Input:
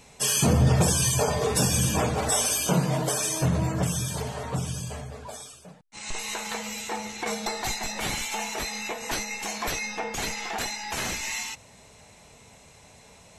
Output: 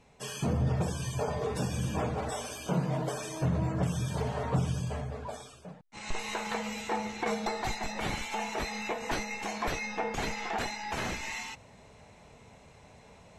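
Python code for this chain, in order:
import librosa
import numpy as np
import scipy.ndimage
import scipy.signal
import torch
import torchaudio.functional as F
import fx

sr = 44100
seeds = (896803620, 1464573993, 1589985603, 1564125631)

y = fx.rider(x, sr, range_db=5, speed_s=0.5)
y = fx.lowpass(y, sr, hz=1800.0, slope=6)
y = F.gain(torch.from_numpy(y), -3.5).numpy()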